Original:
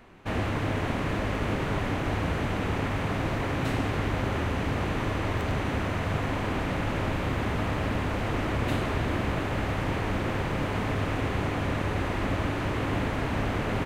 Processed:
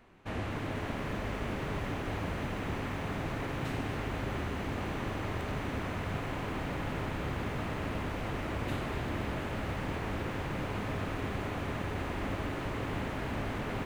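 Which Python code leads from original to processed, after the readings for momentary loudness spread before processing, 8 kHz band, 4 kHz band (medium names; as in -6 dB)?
1 LU, -6.0 dB, -6.5 dB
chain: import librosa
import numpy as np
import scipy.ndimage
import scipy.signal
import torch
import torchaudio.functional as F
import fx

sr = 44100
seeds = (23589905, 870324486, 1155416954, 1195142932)

y = fx.echo_crushed(x, sr, ms=245, feedback_pct=80, bits=8, wet_db=-10.0)
y = F.gain(torch.from_numpy(y), -7.5).numpy()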